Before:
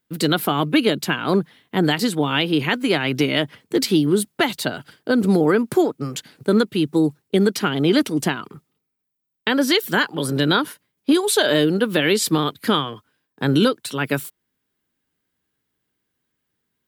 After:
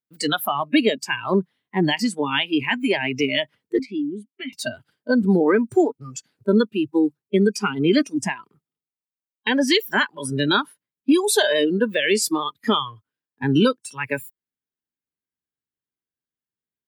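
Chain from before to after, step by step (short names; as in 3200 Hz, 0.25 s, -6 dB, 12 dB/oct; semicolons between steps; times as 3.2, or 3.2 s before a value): spectral noise reduction 20 dB; 3.79–4.53 vowel filter i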